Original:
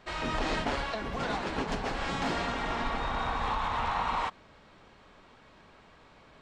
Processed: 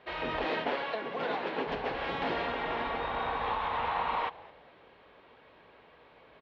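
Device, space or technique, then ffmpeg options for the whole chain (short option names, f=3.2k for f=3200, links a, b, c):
frequency-shifting delay pedal into a guitar cabinet: -filter_complex "[0:a]asettb=1/sr,asplit=3[a][b][c];[a]atrim=end=0.444[d];[b]atrim=start=0.44:end=1.67,asetpts=PTS-STARTPTS,afade=t=in:d=0.004:c=qsin,afade=t=out:st=1.226:d=0.004:c=qsin,highpass=f=150:w=0.5412,highpass=f=150:w=1.3066[e];[c]atrim=start=1.666[f];[d][e]acrossfade=d=0.004:c1=hsin:c2=qsin[g];[g][f]acrossfade=d=0.004:c1=qsin:c2=hsin,asplit=3[h][i][j];[i]adelay=212,afreqshift=-110,volume=-20.5dB[k];[j]adelay=424,afreqshift=-220,volume=-31dB[l];[h][k][l]amix=inputs=3:normalize=0,highpass=77,equalizer=f=84:t=q:w=4:g=-10,equalizer=f=130:t=q:w=4:g=-7,equalizer=f=200:t=q:w=4:g=-9,equalizer=f=280:t=q:w=4:g=-3,equalizer=f=480:t=q:w=4:g=5,equalizer=f=1.3k:t=q:w=4:g=-4,lowpass=f=3.6k:w=0.5412,lowpass=f=3.6k:w=1.3066"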